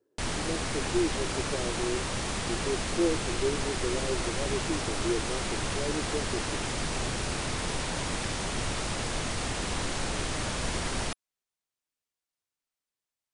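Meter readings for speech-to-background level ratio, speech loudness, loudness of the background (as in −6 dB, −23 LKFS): −3.0 dB, −34.5 LKFS, −31.5 LKFS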